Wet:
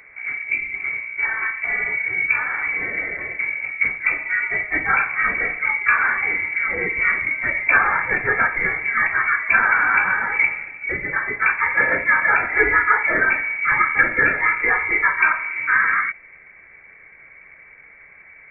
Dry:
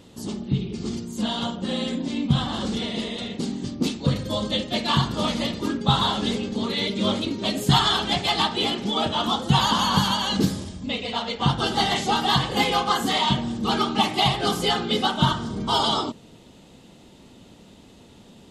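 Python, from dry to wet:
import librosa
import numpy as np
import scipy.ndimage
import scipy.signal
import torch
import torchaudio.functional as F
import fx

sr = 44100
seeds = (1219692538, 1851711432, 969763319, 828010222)

y = scipy.signal.sosfilt(scipy.signal.butter(2, 230.0, 'highpass', fs=sr, output='sos'), x)
y = fx.freq_invert(y, sr, carrier_hz=2500)
y = y * 10.0 ** (6.5 / 20.0)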